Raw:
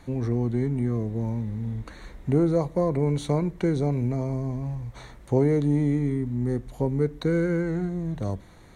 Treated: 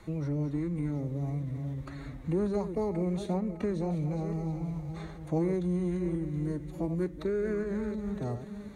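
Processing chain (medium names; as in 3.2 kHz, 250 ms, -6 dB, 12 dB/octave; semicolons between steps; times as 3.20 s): backward echo that repeats 362 ms, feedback 45%, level -10.5 dB; formant-preserving pitch shift +3.5 st; three bands compressed up and down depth 40%; trim -7 dB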